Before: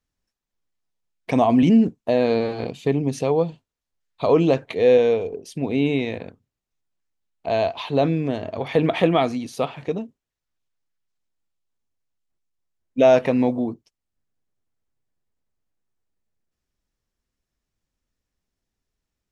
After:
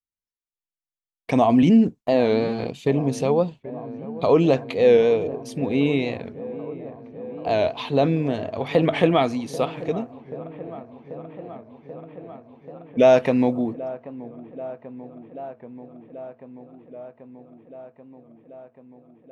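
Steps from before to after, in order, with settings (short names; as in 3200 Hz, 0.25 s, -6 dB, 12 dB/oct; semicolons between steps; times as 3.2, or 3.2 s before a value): gate with hold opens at -33 dBFS; dark delay 0.785 s, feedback 79%, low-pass 1400 Hz, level -17 dB; record warp 45 rpm, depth 100 cents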